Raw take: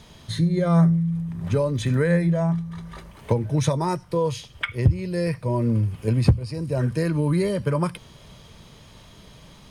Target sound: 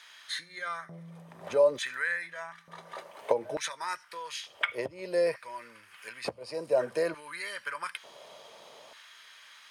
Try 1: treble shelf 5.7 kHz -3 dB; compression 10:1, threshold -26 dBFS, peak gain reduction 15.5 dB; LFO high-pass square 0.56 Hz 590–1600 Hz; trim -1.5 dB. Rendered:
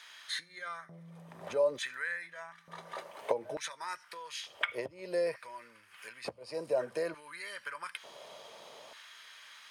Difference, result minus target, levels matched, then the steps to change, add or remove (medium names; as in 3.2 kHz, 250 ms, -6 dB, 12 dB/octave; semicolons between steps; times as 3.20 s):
compression: peak gain reduction +6 dB
change: compression 10:1, threshold -19.5 dBFS, peak gain reduction 10 dB